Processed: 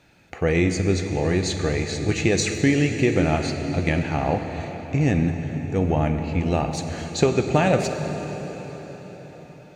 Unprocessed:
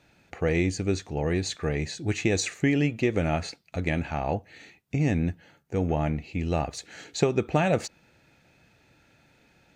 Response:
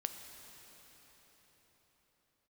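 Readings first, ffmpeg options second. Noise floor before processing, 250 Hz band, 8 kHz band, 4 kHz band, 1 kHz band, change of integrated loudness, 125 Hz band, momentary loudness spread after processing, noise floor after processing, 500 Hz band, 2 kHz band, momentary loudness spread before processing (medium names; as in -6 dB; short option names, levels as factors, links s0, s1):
-63 dBFS, +5.5 dB, +5.0 dB, +5.0 dB, +5.5 dB, +5.0 dB, +5.5 dB, 13 LU, -44 dBFS, +5.0 dB, +5.0 dB, 9 LU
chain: -filter_complex "[1:a]atrim=start_sample=2205[s0];[0:a][s0]afir=irnorm=-1:irlink=0,volume=1.88"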